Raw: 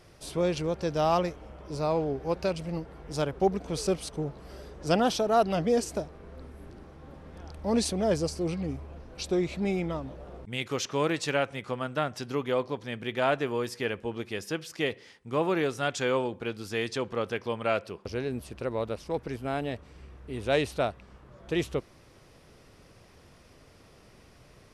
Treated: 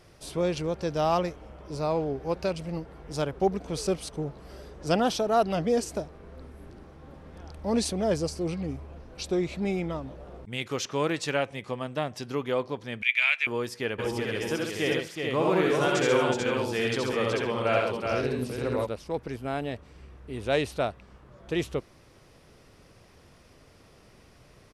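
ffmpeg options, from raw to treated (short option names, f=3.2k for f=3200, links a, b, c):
-filter_complex "[0:a]asettb=1/sr,asplit=3[a][b][c];[a]atrim=end=11.414[d];[b]atrim=start=11.41:end=12.23,asetpts=PTS-STARTPTS,afade=t=in:d=0.004:c=qsin,afade=t=out:st=0.816:d=0.004:c=qsin,equalizer=f=1.4k:w=7.2:g=-11.5[e];[c]atrim=start=12.226[f];[d][e]acrossfade=d=0.004:c1=hsin:c2=qsin[g];[g][f]acrossfade=d=0.004:c1=qsin:c2=hsin,asettb=1/sr,asplit=3[h][i][j];[h]atrim=end=13.024[k];[i]atrim=start=13.02:end=13.47,asetpts=PTS-STARTPTS,afade=t=in:d=0.004:c=qsin,afade=t=out:st=0.446:d=0.004:c=qsin,highpass=f=2.3k:t=q:w=10[l];[j]atrim=start=13.466[m];[k][l]acrossfade=d=0.004:c1=hsin:c2=qsin[n];[n][m]acrossfade=d=0.004:c1=qsin:c2=hsin,asplit=3[o][p][q];[o]afade=t=out:st=13.98:d=0.02[r];[p]aecho=1:1:66|82|136|372|440|516:0.596|0.668|0.501|0.562|0.631|0.1,afade=t=in:st=13.98:d=0.02,afade=t=out:st=18.85:d=0.02[s];[q]afade=t=in:st=18.85:d=0.02[t];[r][s][t]amix=inputs=3:normalize=0"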